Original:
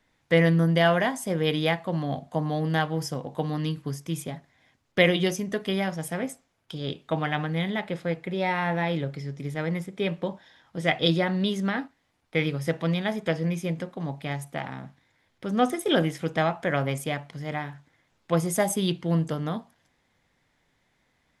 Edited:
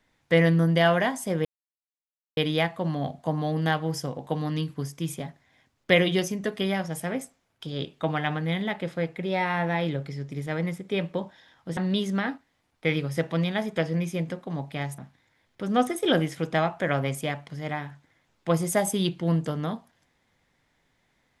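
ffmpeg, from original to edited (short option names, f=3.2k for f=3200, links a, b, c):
-filter_complex "[0:a]asplit=4[a][b][c][d];[a]atrim=end=1.45,asetpts=PTS-STARTPTS,afade=t=out:st=1.446:d=0.004:c=hsin,apad=pad_dur=0.92[e];[b]atrim=start=1.45:end=10.852,asetpts=PTS-STARTPTS,afade=t=in:d=0.004:c=hsin[f];[c]atrim=start=11.268:end=14.482[g];[d]atrim=start=14.808[h];[e][f]concat=n=2:v=0:a=1[i];[i][g]acrossfade=d=0.004:c1=hsin:c2=hsin[j];[j][h]acrossfade=d=0.004:c1=hsin:c2=hsin"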